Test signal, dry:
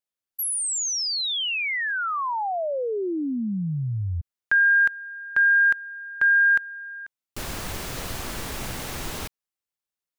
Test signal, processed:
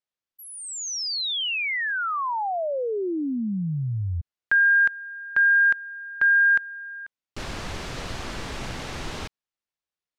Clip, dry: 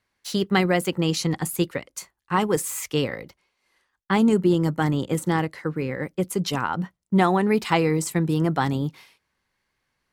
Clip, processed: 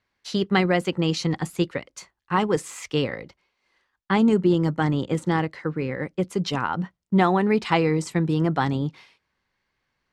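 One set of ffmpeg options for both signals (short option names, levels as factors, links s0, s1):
-af "lowpass=5500"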